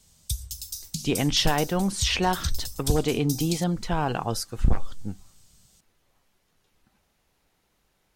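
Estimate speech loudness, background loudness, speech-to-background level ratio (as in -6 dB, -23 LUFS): -26.0 LUFS, -34.0 LUFS, 8.0 dB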